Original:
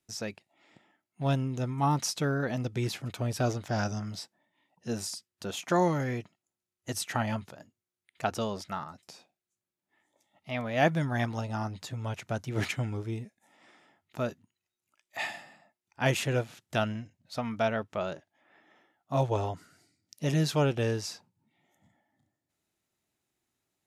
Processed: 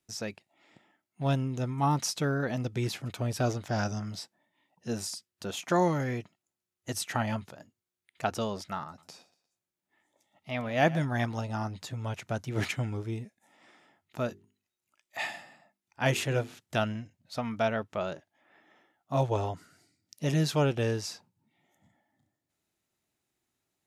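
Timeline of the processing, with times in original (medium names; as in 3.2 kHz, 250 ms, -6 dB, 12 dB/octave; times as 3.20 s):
8.86–11.05 s: feedback delay 118 ms, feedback 40%, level -18.5 dB
14.27–16.60 s: hum notches 50/100/150/200/250/300/350/400/450 Hz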